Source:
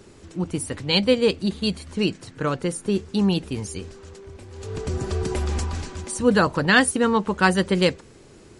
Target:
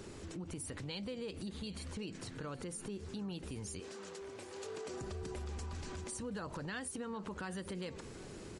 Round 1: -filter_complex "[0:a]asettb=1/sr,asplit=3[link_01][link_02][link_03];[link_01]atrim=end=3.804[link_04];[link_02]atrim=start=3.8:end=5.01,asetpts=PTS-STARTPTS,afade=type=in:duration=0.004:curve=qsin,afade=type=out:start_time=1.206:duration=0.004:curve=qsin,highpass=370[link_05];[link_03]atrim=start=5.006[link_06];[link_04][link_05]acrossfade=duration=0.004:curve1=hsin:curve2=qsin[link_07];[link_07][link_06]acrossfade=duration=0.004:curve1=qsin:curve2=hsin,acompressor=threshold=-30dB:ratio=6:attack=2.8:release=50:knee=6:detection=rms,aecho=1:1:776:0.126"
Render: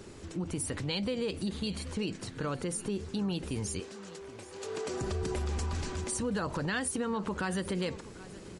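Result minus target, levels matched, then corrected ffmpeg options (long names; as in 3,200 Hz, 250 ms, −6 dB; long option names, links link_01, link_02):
downward compressor: peak gain reduction −9.5 dB
-filter_complex "[0:a]asettb=1/sr,asplit=3[link_01][link_02][link_03];[link_01]atrim=end=3.804[link_04];[link_02]atrim=start=3.8:end=5.01,asetpts=PTS-STARTPTS,afade=type=in:duration=0.004:curve=qsin,afade=type=out:start_time=1.206:duration=0.004:curve=qsin,highpass=370[link_05];[link_03]atrim=start=5.006[link_06];[link_04][link_05]acrossfade=duration=0.004:curve1=hsin:curve2=qsin[link_07];[link_07][link_06]acrossfade=duration=0.004:curve1=qsin:curve2=hsin,acompressor=threshold=-41.5dB:ratio=6:attack=2.8:release=50:knee=6:detection=rms,aecho=1:1:776:0.126"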